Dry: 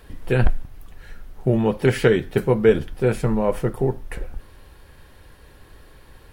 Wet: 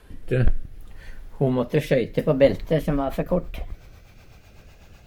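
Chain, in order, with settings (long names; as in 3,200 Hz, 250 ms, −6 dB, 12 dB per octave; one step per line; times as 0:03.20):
gliding playback speed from 96% → 154%
rotating-speaker cabinet horn 0.65 Hz, later 8 Hz, at 0:02.49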